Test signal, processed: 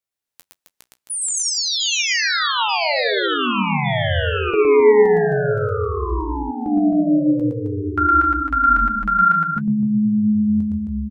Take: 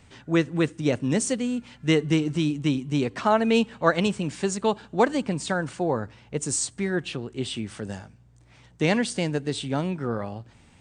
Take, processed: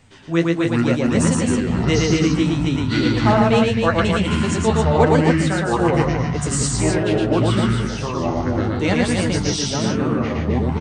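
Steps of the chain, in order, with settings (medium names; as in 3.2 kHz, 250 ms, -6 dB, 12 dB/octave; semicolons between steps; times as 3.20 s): flange 1.6 Hz, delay 7.3 ms, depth 6.3 ms, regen +36%; ever faster or slower copies 246 ms, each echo -6 st, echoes 3; loudspeakers at several distances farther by 39 m -2 dB, 91 m -5 dB; trim +5.5 dB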